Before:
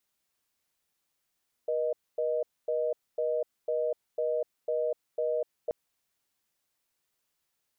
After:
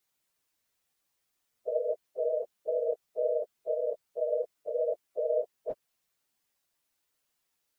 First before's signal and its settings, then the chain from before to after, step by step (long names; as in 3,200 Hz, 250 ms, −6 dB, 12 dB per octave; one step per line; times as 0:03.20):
call progress tone reorder tone, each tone −29 dBFS 4.03 s
random phases in long frames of 50 ms